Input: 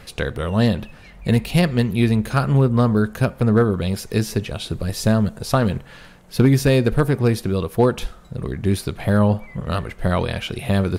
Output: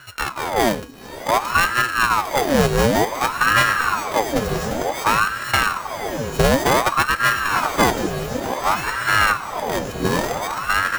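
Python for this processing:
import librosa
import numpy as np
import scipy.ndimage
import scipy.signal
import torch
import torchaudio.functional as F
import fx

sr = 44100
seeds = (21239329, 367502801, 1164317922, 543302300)

y = np.r_[np.sort(x[:len(x) // 32 * 32].reshape(-1, 32), axis=1).ravel(), x[len(x) // 32 * 32:]]
y = fx.echo_diffused(y, sr, ms=1026, feedback_pct=45, wet_db=-6.5)
y = fx.ring_lfo(y, sr, carrier_hz=890.0, swing_pct=70, hz=0.55)
y = y * librosa.db_to_amplitude(1.5)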